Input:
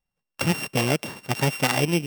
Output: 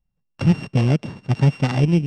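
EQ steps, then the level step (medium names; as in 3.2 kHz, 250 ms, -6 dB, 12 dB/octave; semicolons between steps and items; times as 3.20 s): tone controls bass +12 dB, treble +11 dB; tape spacing loss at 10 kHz 42 dB; treble shelf 4.2 kHz +10 dB; 0.0 dB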